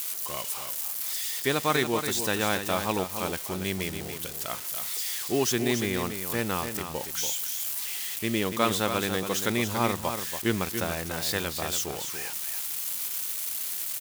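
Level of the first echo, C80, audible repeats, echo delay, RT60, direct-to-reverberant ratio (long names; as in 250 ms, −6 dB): −8.0 dB, no reverb audible, 1, 284 ms, no reverb audible, no reverb audible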